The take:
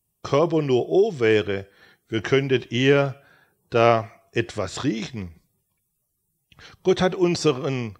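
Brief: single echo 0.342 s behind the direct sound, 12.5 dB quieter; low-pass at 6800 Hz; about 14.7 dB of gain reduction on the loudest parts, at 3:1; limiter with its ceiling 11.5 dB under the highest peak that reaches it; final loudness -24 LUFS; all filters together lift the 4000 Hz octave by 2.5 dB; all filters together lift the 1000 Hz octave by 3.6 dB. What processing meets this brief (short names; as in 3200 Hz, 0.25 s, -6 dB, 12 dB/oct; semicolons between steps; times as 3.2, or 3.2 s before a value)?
LPF 6800 Hz; bell 1000 Hz +5 dB; bell 4000 Hz +3.5 dB; compressor 3:1, threshold -31 dBFS; limiter -26.5 dBFS; echo 0.342 s -12.5 dB; gain +14 dB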